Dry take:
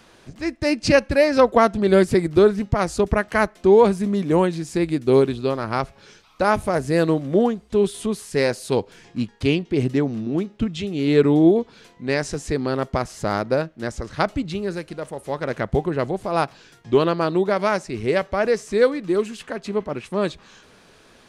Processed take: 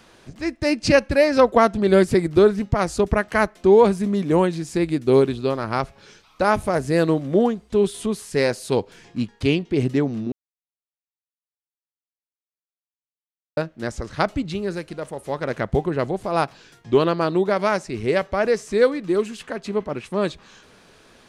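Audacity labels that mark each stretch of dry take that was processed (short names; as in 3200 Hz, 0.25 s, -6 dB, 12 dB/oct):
10.320000	13.570000	mute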